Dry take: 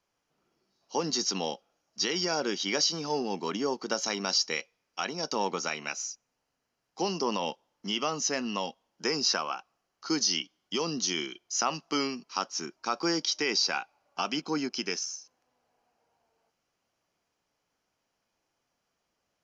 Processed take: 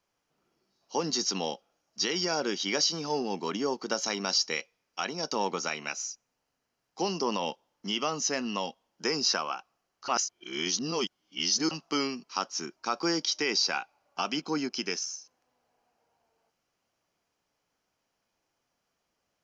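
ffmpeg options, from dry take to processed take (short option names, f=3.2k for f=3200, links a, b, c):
-filter_complex "[0:a]asplit=3[a][b][c];[a]atrim=end=10.082[d];[b]atrim=start=10.078:end=11.712,asetpts=PTS-STARTPTS,areverse[e];[c]atrim=start=11.708[f];[d][e]acrossfade=d=0.004:c1=hsin:c2=hsin[g];[g][f]acrossfade=d=0.004:c1=hsin:c2=hsin"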